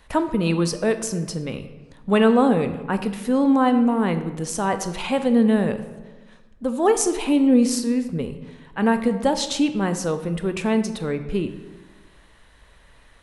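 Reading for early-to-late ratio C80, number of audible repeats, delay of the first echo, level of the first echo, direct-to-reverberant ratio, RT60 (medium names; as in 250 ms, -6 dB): 12.5 dB, no echo, no echo, no echo, 9.0 dB, 1.2 s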